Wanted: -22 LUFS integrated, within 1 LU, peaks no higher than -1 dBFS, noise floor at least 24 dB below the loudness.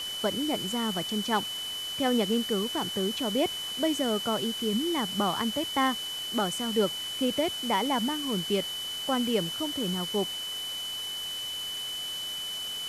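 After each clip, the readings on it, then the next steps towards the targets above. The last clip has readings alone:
steady tone 3 kHz; tone level -33 dBFS; noise floor -35 dBFS; noise floor target -53 dBFS; loudness -29.0 LUFS; peak level -14.0 dBFS; loudness target -22.0 LUFS
-> band-stop 3 kHz, Q 30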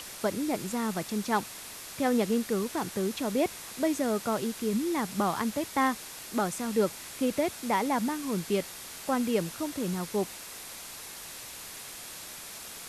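steady tone not found; noise floor -44 dBFS; noise floor target -55 dBFS
-> noise reduction 11 dB, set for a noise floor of -44 dBFS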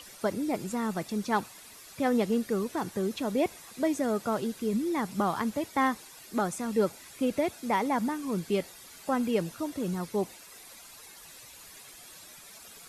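noise floor -50 dBFS; noise floor target -55 dBFS
-> noise reduction 6 dB, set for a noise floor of -50 dBFS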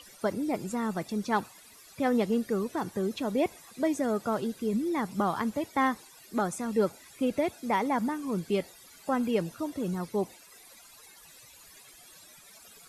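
noise floor -54 dBFS; noise floor target -55 dBFS
-> noise reduction 6 dB, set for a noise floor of -54 dBFS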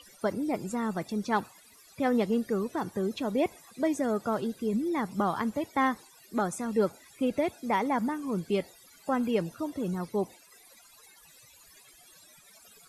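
noise floor -57 dBFS; loudness -30.5 LUFS; peak level -15.0 dBFS; loudness target -22.0 LUFS
-> trim +8.5 dB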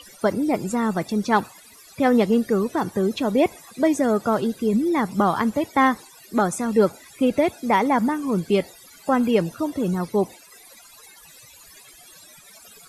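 loudness -22.0 LUFS; peak level -6.5 dBFS; noise floor -48 dBFS

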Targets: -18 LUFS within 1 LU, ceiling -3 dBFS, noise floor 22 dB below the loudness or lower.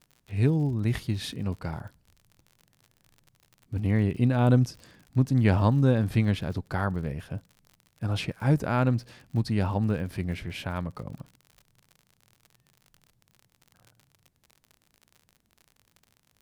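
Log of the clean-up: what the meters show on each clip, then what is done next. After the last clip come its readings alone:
tick rate 54 per s; loudness -27.0 LUFS; peak level -8.5 dBFS; loudness target -18.0 LUFS
-> de-click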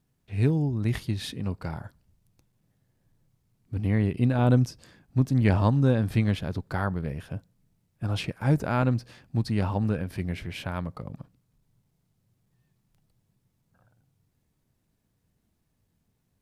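tick rate 0.061 per s; loudness -27.0 LUFS; peak level -8.5 dBFS; loudness target -18.0 LUFS
-> trim +9 dB; peak limiter -3 dBFS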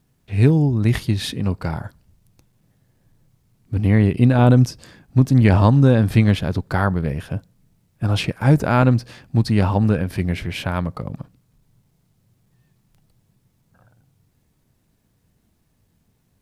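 loudness -18.5 LUFS; peak level -3.0 dBFS; noise floor -65 dBFS

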